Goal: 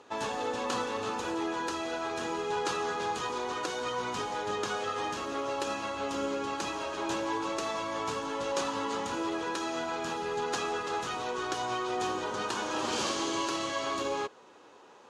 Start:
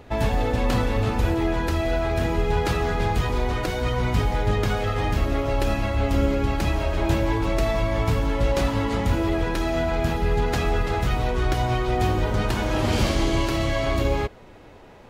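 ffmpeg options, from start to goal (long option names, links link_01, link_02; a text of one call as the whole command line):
ffmpeg -i in.wav -af "highpass=410,equalizer=frequency=650:width_type=q:width=4:gain=-8,equalizer=frequency=1100:width_type=q:width=4:gain=4,equalizer=frequency=2100:width_type=q:width=4:gain=-9,equalizer=frequency=6500:width_type=q:width=4:gain=6,lowpass=frequency=9500:width=0.5412,lowpass=frequency=9500:width=1.3066,volume=-3.5dB" out.wav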